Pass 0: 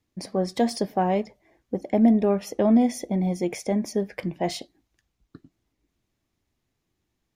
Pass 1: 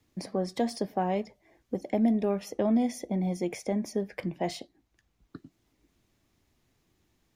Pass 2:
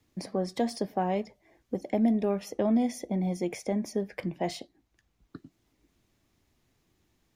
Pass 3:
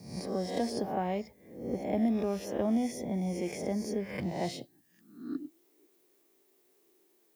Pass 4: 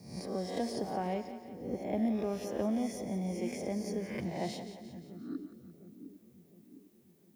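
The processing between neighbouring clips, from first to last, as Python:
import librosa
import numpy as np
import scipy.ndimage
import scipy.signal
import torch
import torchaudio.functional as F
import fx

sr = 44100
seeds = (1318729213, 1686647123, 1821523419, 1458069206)

y1 = fx.band_squash(x, sr, depth_pct=40)
y1 = y1 * librosa.db_to_amplitude(-5.5)
y2 = y1
y3 = fx.spec_swells(y2, sr, rise_s=0.66)
y3 = fx.dmg_noise_colour(y3, sr, seeds[0], colour='violet', level_db=-66.0)
y3 = fx.filter_sweep_highpass(y3, sr, from_hz=70.0, to_hz=390.0, start_s=4.1, end_s=5.67, q=5.6)
y3 = y3 * librosa.db_to_amplitude(-5.0)
y4 = fx.echo_split(y3, sr, split_hz=380.0, low_ms=707, high_ms=175, feedback_pct=52, wet_db=-10.5)
y4 = y4 * librosa.db_to_amplitude(-3.0)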